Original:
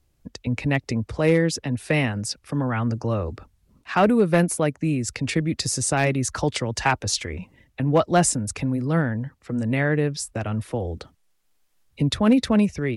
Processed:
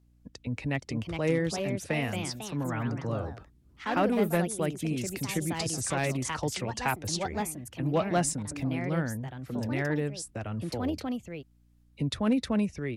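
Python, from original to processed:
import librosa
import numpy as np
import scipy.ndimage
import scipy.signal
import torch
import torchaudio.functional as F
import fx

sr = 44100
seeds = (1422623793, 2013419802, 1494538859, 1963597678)

y = fx.add_hum(x, sr, base_hz=60, snr_db=31)
y = fx.echo_pitch(y, sr, ms=528, semitones=3, count=2, db_per_echo=-6.0)
y = y * 10.0 ** (-8.5 / 20.0)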